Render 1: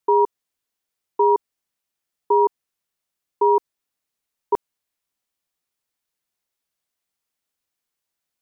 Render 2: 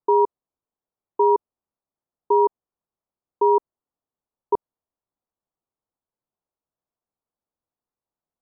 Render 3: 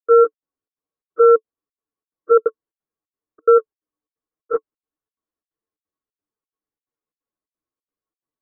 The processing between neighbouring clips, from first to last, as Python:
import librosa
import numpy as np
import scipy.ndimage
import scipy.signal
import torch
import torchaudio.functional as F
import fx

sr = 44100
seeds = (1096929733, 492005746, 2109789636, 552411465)

y1 = scipy.signal.sosfilt(scipy.signal.butter(4, 1100.0, 'lowpass', fs=sr, output='sos'), x)
y2 = fx.partial_stretch(y1, sr, pct=126)
y2 = fx.step_gate(y2, sr, bpm=177, pattern='.xxx.xxx', floor_db=-60.0, edge_ms=4.5)
y2 = fx.small_body(y2, sr, hz=(310.0, 440.0, 1100.0), ring_ms=55, db=12)